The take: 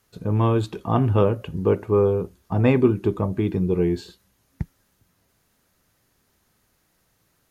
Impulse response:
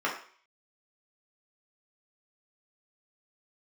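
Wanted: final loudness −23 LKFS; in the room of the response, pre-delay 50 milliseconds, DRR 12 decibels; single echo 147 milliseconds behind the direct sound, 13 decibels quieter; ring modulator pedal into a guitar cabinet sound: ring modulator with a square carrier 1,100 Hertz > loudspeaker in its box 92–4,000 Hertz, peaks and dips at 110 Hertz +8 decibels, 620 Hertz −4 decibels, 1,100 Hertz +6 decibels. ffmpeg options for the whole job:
-filter_complex "[0:a]aecho=1:1:147:0.224,asplit=2[link_01][link_02];[1:a]atrim=start_sample=2205,adelay=50[link_03];[link_02][link_03]afir=irnorm=-1:irlink=0,volume=-22.5dB[link_04];[link_01][link_04]amix=inputs=2:normalize=0,aeval=exprs='val(0)*sgn(sin(2*PI*1100*n/s))':channel_layout=same,highpass=92,equalizer=frequency=110:width_type=q:width=4:gain=8,equalizer=frequency=620:width_type=q:width=4:gain=-4,equalizer=frequency=1100:width_type=q:width=4:gain=6,lowpass=frequency=4000:width=0.5412,lowpass=frequency=4000:width=1.3066,volume=-3.5dB"

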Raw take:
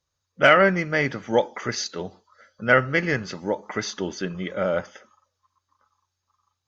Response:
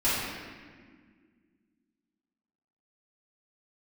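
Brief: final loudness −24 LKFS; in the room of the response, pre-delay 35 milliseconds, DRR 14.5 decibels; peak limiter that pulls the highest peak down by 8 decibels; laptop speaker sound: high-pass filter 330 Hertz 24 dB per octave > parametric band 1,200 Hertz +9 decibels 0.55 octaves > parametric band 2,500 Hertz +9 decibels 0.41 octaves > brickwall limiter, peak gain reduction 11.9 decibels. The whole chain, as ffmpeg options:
-filter_complex "[0:a]alimiter=limit=-12dB:level=0:latency=1,asplit=2[link_01][link_02];[1:a]atrim=start_sample=2205,adelay=35[link_03];[link_02][link_03]afir=irnorm=-1:irlink=0,volume=-28dB[link_04];[link_01][link_04]amix=inputs=2:normalize=0,highpass=frequency=330:width=0.5412,highpass=frequency=330:width=1.3066,equalizer=frequency=1200:width_type=o:width=0.55:gain=9,equalizer=frequency=2500:width_type=o:width=0.41:gain=9,volume=4.5dB,alimiter=limit=-12dB:level=0:latency=1"

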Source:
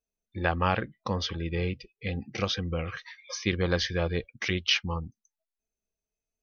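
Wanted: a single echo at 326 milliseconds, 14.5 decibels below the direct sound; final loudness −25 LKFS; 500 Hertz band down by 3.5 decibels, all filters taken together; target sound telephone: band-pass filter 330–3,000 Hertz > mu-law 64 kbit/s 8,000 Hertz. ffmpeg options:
ffmpeg -i in.wav -af "highpass=330,lowpass=3000,equalizer=frequency=500:width_type=o:gain=-3,aecho=1:1:326:0.188,volume=9dB" -ar 8000 -c:a pcm_mulaw out.wav

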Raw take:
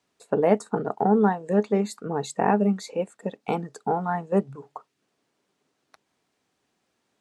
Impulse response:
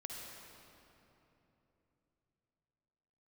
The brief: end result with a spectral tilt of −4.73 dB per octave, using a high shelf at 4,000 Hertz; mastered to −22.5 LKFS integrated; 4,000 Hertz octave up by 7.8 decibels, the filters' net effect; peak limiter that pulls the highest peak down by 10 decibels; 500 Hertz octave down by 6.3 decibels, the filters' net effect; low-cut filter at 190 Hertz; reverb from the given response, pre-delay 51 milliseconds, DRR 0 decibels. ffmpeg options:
-filter_complex "[0:a]highpass=190,equalizer=frequency=500:width_type=o:gain=-8,highshelf=frequency=4000:gain=4,equalizer=frequency=4000:width_type=o:gain=6.5,alimiter=limit=-21dB:level=0:latency=1,asplit=2[link_01][link_02];[1:a]atrim=start_sample=2205,adelay=51[link_03];[link_02][link_03]afir=irnorm=-1:irlink=0,volume=1.5dB[link_04];[link_01][link_04]amix=inputs=2:normalize=0,volume=7.5dB"

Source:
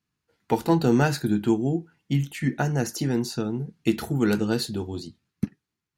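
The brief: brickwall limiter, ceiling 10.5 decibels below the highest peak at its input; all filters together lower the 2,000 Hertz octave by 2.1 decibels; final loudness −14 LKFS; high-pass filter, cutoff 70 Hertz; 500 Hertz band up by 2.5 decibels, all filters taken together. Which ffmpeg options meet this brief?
ffmpeg -i in.wav -af "highpass=70,equalizer=frequency=500:width_type=o:gain=3.5,equalizer=frequency=2000:width_type=o:gain=-3.5,volume=14dB,alimiter=limit=-2.5dB:level=0:latency=1" out.wav

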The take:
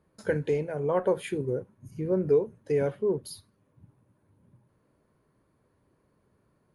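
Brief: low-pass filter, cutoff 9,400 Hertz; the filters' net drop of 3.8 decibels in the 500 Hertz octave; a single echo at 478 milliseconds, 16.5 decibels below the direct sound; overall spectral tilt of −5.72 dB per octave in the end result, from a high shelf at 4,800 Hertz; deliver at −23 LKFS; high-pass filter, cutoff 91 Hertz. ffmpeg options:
ffmpeg -i in.wav -af "highpass=91,lowpass=9400,equalizer=frequency=500:width_type=o:gain=-4.5,highshelf=frequency=4800:gain=-7,aecho=1:1:478:0.15,volume=8.5dB" out.wav

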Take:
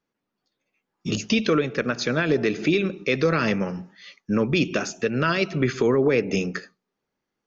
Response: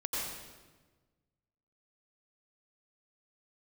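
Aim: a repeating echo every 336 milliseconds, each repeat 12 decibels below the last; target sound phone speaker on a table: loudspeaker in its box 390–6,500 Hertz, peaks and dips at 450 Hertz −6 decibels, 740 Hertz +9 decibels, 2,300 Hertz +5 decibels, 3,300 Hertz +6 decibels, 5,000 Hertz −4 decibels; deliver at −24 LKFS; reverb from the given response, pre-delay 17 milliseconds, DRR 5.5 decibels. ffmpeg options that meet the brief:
-filter_complex "[0:a]aecho=1:1:336|672|1008:0.251|0.0628|0.0157,asplit=2[link_01][link_02];[1:a]atrim=start_sample=2205,adelay=17[link_03];[link_02][link_03]afir=irnorm=-1:irlink=0,volume=-10.5dB[link_04];[link_01][link_04]amix=inputs=2:normalize=0,highpass=frequency=390:width=0.5412,highpass=frequency=390:width=1.3066,equalizer=frequency=450:width_type=q:width=4:gain=-6,equalizer=frequency=740:width_type=q:width=4:gain=9,equalizer=frequency=2300:width_type=q:width=4:gain=5,equalizer=frequency=3300:width_type=q:width=4:gain=6,equalizer=frequency=5000:width_type=q:width=4:gain=-4,lowpass=frequency=6500:width=0.5412,lowpass=frequency=6500:width=1.3066"

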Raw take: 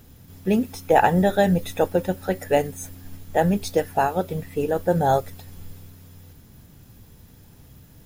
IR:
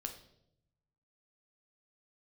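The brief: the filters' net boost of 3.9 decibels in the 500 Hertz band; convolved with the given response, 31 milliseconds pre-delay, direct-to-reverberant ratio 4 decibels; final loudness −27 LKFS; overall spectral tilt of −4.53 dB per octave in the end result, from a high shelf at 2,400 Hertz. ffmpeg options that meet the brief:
-filter_complex "[0:a]equalizer=frequency=500:width_type=o:gain=5,highshelf=frequency=2400:gain=-7.5,asplit=2[link_01][link_02];[1:a]atrim=start_sample=2205,adelay=31[link_03];[link_02][link_03]afir=irnorm=-1:irlink=0,volume=-2dB[link_04];[link_01][link_04]amix=inputs=2:normalize=0,volume=-8.5dB"

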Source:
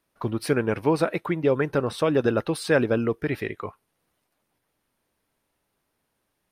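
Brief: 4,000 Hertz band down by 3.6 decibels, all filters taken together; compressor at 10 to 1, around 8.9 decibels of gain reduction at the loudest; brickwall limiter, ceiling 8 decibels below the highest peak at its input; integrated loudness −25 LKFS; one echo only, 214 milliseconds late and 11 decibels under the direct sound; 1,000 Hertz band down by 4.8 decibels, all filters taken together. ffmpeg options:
ffmpeg -i in.wav -af "equalizer=frequency=1000:width_type=o:gain=-6,equalizer=frequency=4000:width_type=o:gain=-4,acompressor=threshold=-26dB:ratio=10,alimiter=level_in=0.5dB:limit=-24dB:level=0:latency=1,volume=-0.5dB,aecho=1:1:214:0.282,volume=10dB" out.wav

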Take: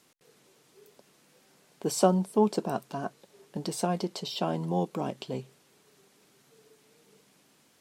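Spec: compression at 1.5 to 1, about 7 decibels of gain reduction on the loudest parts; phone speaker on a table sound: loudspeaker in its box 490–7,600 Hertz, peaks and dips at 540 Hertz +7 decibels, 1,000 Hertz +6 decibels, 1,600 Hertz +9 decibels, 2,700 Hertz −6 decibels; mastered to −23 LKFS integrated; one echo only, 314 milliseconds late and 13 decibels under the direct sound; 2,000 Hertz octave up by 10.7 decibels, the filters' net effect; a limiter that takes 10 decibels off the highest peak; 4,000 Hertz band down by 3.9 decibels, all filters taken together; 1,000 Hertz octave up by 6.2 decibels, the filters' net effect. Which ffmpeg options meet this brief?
ffmpeg -i in.wav -af "equalizer=frequency=1000:width_type=o:gain=3.5,equalizer=frequency=2000:width_type=o:gain=5.5,equalizer=frequency=4000:width_type=o:gain=-5.5,acompressor=threshold=-35dB:ratio=1.5,alimiter=limit=-24dB:level=0:latency=1,highpass=frequency=490:width=0.5412,highpass=frequency=490:width=1.3066,equalizer=frequency=540:width_type=q:width=4:gain=7,equalizer=frequency=1000:width_type=q:width=4:gain=6,equalizer=frequency=1600:width_type=q:width=4:gain=9,equalizer=frequency=2700:width_type=q:width=4:gain=-6,lowpass=frequency=7600:width=0.5412,lowpass=frequency=7600:width=1.3066,aecho=1:1:314:0.224,volume=14dB" out.wav

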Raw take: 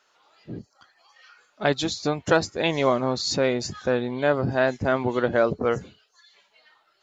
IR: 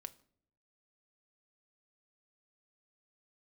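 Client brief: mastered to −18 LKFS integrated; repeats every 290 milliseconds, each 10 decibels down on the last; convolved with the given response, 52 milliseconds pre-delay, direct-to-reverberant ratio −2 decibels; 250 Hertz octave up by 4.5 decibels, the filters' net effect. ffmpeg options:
-filter_complex "[0:a]equalizer=frequency=250:width_type=o:gain=5.5,aecho=1:1:290|580|870|1160:0.316|0.101|0.0324|0.0104,asplit=2[link_01][link_02];[1:a]atrim=start_sample=2205,adelay=52[link_03];[link_02][link_03]afir=irnorm=-1:irlink=0,volume=7dB[link_04];[link_01][link_04]amix=inputs=2:normalize=0"

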